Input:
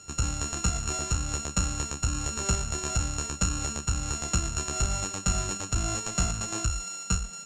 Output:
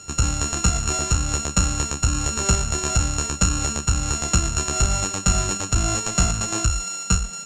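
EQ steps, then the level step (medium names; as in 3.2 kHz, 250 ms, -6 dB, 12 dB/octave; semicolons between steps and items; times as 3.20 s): flat; +7.5 dB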